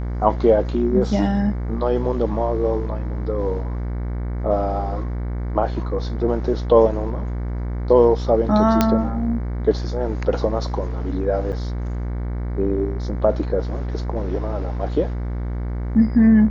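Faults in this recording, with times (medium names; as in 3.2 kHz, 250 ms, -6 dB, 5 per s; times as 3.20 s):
buzz 60 Hz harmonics 38 -25 dBFS
8.81 s: pop -2 dBFS
11.52–11.53 s: dropout 8 ms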